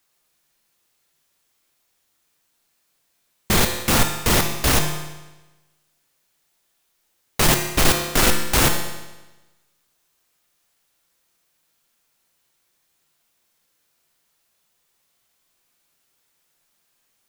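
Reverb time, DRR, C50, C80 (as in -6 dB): 1.1 s, 4.0 dB, 6.0 dB, 8.0 dB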